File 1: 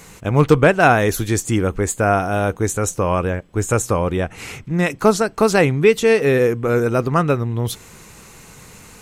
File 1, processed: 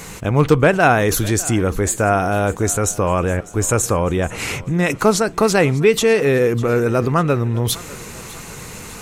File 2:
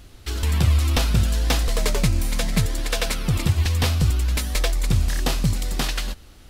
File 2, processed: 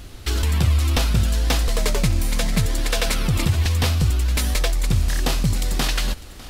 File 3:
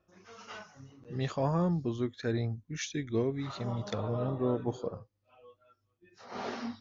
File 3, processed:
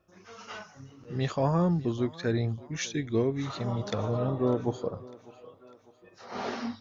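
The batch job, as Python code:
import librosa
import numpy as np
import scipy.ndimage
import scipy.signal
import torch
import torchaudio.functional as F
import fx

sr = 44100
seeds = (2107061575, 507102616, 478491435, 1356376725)

p1 = fx.over_compress(x, sr, threshold_db=-27.0, ratio=-1.0)
p2 = x + (p1 * 10.0 ** (-3.0 / 20.0))
p3 = fx.echo_thinned(p2, sr, ms=601, feedback_pct=51, hz=230.0, wet_db=-19.5)
y = p3 * 10.0 ** (-1.0 / 20.0)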